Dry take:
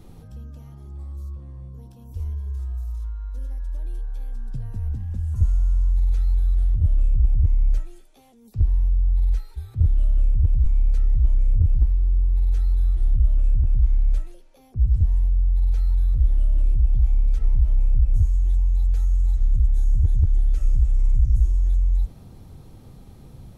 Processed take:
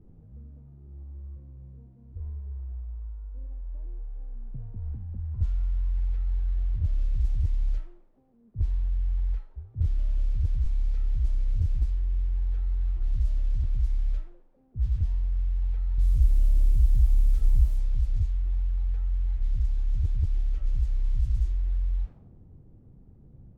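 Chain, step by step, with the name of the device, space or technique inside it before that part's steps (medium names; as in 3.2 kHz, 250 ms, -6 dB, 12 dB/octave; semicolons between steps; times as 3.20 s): 15.98–17.68 s: bass shelf 330 Hz +5.5 dB; cassette deck with a dynamic noise filter (white noise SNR 33 dB; level-controlled noise filter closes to 370 Hz, open at -9.5 dBFS); trim -7.5 dB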